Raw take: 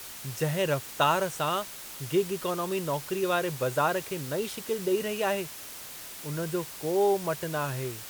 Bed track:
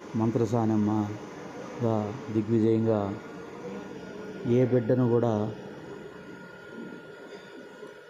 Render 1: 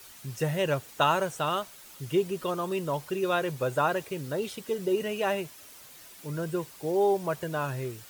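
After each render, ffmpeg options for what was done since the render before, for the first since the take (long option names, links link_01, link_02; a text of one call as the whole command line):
ffmpeg -i in.wav -af "afftdn=noise_reduction=9:noise_floor=-43" out.wav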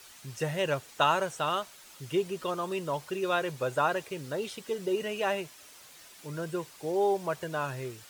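ffmpeg -i in.wav -filter_complex "[0:a]acrossover=split=9900[link_01][link_02];[link_02]acompressor=threshold=-57dB:ratio=4:attack=1:release=60[link_03];[link_01][link_03]amix=inputs=2:normalize=0,lowshelf=frequency=390:gain=-5.5" out.wav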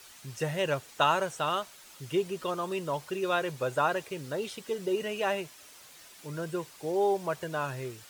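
ffmpeg -i in.wav -af anull out.wav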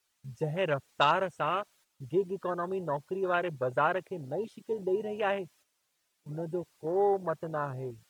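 ffmpeg -i in.wav -af "afwtdn=0.02,agate=range=-9dB:threshold=-59dB:ratio=16:detection=peak" out.wav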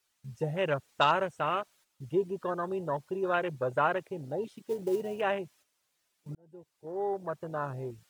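ffmpeg -i in.wav -filter_complex "[0:a]asettb=1/sr,asplit=3[link_01][link_02][link_03];[link_01]atrim=end=4.464[link_04];[link_02]atrim=start=4.46:end=5.21,asetpts=PTS-STARTPTS,afade=type=in:duration=0.004:curve=qsin,afade=type=out:start_time=0.746:duration=0.004:curve=qsin,acrusher=bits=6:mode=log:mix=0:aa=0.000001[link_05];[link_03]atrim=start=5.206[link_06];[link_04][link_05]acrossfade=duration=0.004:curve1=hsin:curve2=qsin[link_07];[link_07][link_06]acrossfade=duration=0.004:curve1=qsin:curve2=hsin,asplit=2[link_08][link_09];[link_08]atrim=end=6.35,asetpts=PTS-STARTPTS,afade=type=out:start_time=6.346:duration=0.004:curve=hsin[link_10];[link_09]atrim=start=6.35,asetpts=PTS-STARTPTS,afade=type=in:duration=1.41[link_11];[link_10][link_11]concat=n=2:v=0:a=1" out.wav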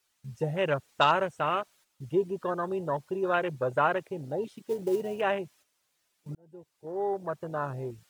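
ffmpeg -i in.wav -af "volume=2dB" out.wav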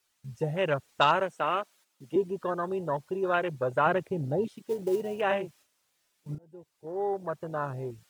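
ffmpeg -i in.wav -filter_complex "[0:a]asettb=1/sr,asplit=3[link_01][link_02][link_03];[link_01]atrim=end=1.204[link_04];[link_02]atrim=start=1.2:end=2.16,asetpts=PTS-STARTPTS,afade=type=in:duration=0.004:curve=qsin,afade=type=out:start_time=0.956:duration=0.004:curve=qsin,highpass=frequency=180:width=0.5412,highpass=frequency=180:width=1.3066[link_05];[link_03]atrim=start=2.156[link_06];[link_04][link_05]acrossfade=duration=0.004:curve1=hsin:curve2=qsin[link_07];[link_07][link_06]acrossfade=duration=0.004:curve1=qsin:curve2=hsin,asettb=1/sr,asplit=3[link_08][link_09][link_10];[link_08]atrim=end=3.864[link_11];[link_09]atrim=start=3.86:end=4.48,asetpts=PTS-STARTPTS,afade=type=in:duration=0.004:curve=qsin,afade=type=out:start_time=0.616:duration=0.004:curve=qsin,lowshelf=frequency=280:gain=10.5[link_12];[link_10]atrim=start=4.476[link_13];[link_11][link_12]acrossfade=duration=0.004:curve1=hsin:curve2=qsin[link_14];[link_14][link_13]acrossfade=duration=0.004:curve1=qsin:curve2=hsin,asettb=1/sr,asplit=3[link_15][link_16][link_17];[link_15]atrim=end=5.274[link_18];[link_16]atrim=start=5.27:end=6.44,asetpts=PTS-STARTPTS,afade=type=in:duration=0.004:curve=qsin,afade=type=out:start_time=1.166:duration=0.004:curve=qsin,asplit=2[link_19][link_20];[link_20]adelay=34,volume=-5dB[link_21];[link_19][link_21]amix=inputs=2:normalize=0,atrim=end_sample=51597[link_22];[link_17]atrim=start=6.436[link_23];[link_18][link_22]acrossfade=duration=0.004:curve1=hsin:curve2=qsin[link_24];[link_24][link_23]acrossfade=duration=0.004:curve1=qsin:curve2=hsin" out.wav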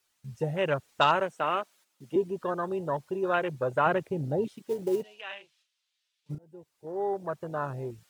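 ffmpeg -i in.wav -filter_complex "[0:a]asplit=3[link_01][link_02][link_03];[link_01]afade=type=out:start_time=5.02:duration=0.02[link_04];[link_02]bandpass=frequency=3500:width_type=q:width=1.7,afade=type=in:start_time=5.02:duration=0.02,afade=type=out:start_time=6.29:duration=0.02[link_05];[link_03]afade=type=in:start_time=6.29:duration=0.02[link_06];[link_04][link_05][link_06]amix=inputs=3:normalize=0" out.wav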